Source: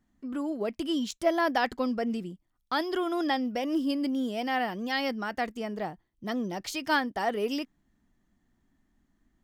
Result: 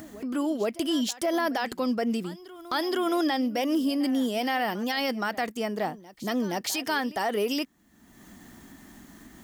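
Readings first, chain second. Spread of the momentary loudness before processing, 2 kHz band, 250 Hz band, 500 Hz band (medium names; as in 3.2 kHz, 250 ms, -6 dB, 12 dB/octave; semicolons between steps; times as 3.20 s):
8 LU, +0.5 dB, +3.0 dB, +2.0 dB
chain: high-pass 180 Hz 6 dB/octave; treble shelf 7.3 kHz +10 dB; upward compressor, threshold -37 dBFS; peak limiter -24 dBFS, peak gain reduction 11.5 dB; reverse echo 471 ms -18.5 dB; trim +5.5 dB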